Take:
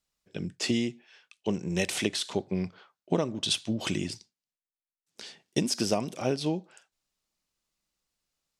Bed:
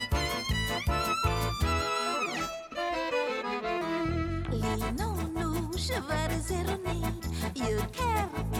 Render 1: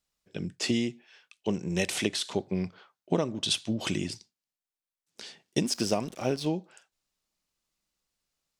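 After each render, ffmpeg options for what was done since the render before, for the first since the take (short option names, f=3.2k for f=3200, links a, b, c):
-filter_complex "[0:a]asettb=1/sr,asplit=3[a][b][c];[a]atrim=end=5.644[d];[b]atrim=start=5.64:end=6.47,asetpts=PTS-STARTPTS,afade=t=in:d=0.004:c=qsin,afade=t=out:st=0.826:d=0.004:c=qsin,aeval=exprs='sgn(val(0))*max(abs(val(0))-0.00355,0)':c=same[e];[c]atrim=start=6.466[f];[d][e]acrossfade=d=0.004:c1=hsin:c2=qsin[g];[g][f]acrossfade=d=0.004:c1=qsin:c2=hsin"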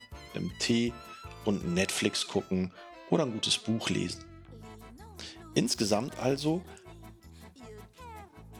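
-filter_complex "[1:a]volume=-18dB[a];[0:a][a]amix=inputs=2:normalize=0"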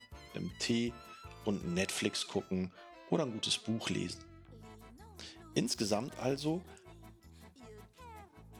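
-af "volume=-5.5dB"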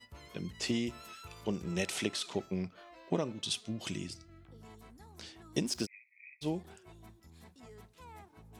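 -filter_complex "[0:a]asettb=1/sr,asplit=3[a][b][c];[a]atrim=end=0.874[d];[b]atrim=start=0.87:end=1.41,asetpts=PTS-STARTPTS,afade=t=in:d=0.004:c=qsin,afade=t=out:st=0.536:d=0.004:c=qsin,highshelf=f=3.2k:g=9[e];[c]atrim=start=1.406[f];[d][e]acrossfade=d=0.004:c1=hsin:c2=qsin[g];[g][f]acrossfade=d=0.004:c1=qsin:c2=hsin,asettb=1/sr,asplit=3[h][i][j];[h]atrim=end=3.324[k];[i]atrim=start=3.32:end=4.29,asetpts=PTS-STARTPTS,afade=t=in:d=0.004:c=qsin,afade=t=out:st=0.966:d=0.004:c=qsin,equalizer=f=790:w=0.3:g=-6[l];[j]atrim=start=4.286[m];[k][l]acrossfade=d=0.004:c1=hsin:c2=qsin[n];[n][m]acrossfade=d=0.004:c1=qsin:c2=hsin,asplit=3[o][p][q];[o]afade=t=out:st=5.85:d=0.02[r];[p]asuperpass=centerf=2200:order=20:qfactor=3.4,afade=t=in:st=5.85:d=0.02,afade=t=out:st=6.41:d=0.02[s];[q]afade=t=in:st=6.41:d=0.02[t];[r][s][t]amix=inputs=3:normalize=0"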